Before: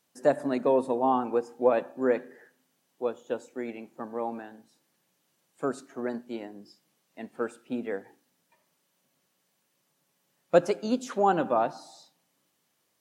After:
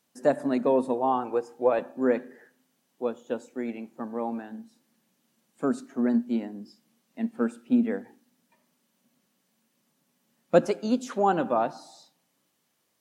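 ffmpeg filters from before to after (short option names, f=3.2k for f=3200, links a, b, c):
-af "asetnsamples=n=441:p=0,asendcmd='0.94 equalizer g -5;1.79 equalizer g 6.5;4.5 equalizer g 14.5;10.66 equalizer g 3.5',equalizer=f=230:t=o:w=0.44:g=6"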